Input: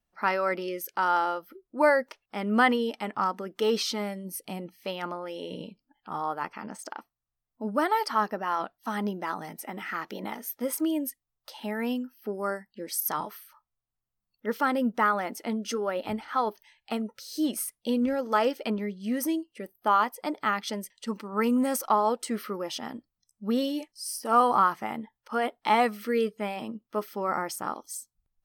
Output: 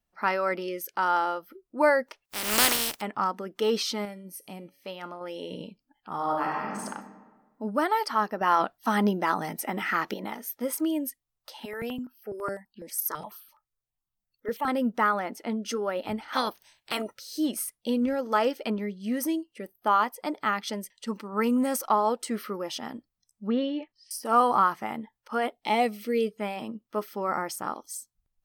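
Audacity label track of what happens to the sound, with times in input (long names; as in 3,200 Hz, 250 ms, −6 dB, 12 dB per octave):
2.240000	3.000000	compressing power law on the bin magnitudes exponent 0.19
4.050000	5.210000	tuned comb filter 140 Hz, decay 0.5 s, mix 50%
6.150000	6.840000	thrown reverb, RT60 1.4 s, DRR −3 dB
8.410000	10.140000	clip gain +6.5 dB
11.650000	14.680000	step-sequenced phaser 12 Hz 200–2,000 Hz
15.190000	15.660000	high-shelf EQ 4,800 Hz −6.5 dB
16.320000	17.140000	ceiling on every frequency bin ceiling under each frame's peak by 23 dB
23.470000	24.110000	low-pass filter 3,200 Hz 24 dB per octave
25.520000	26.310000	flat-topped bell 1,300 Hz −11 dB 1.1 octaves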